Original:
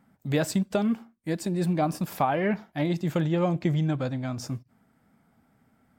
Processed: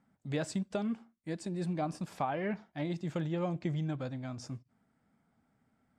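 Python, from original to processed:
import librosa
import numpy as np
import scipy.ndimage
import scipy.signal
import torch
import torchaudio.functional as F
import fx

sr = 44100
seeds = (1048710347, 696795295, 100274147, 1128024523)

y = scipy.signal.sosfilt(scipy.signal.butter(4, 9300.0, 'lowpass', fs=sr, output='sos'), x)
y = y * 10.0 ** (-9.0 / 20.0)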